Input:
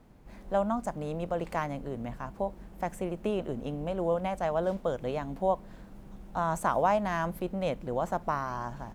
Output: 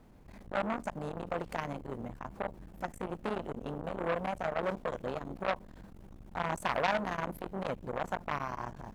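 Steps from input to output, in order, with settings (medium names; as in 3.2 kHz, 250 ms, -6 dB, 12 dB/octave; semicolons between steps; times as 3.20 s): transformer saturation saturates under 1.9 kHz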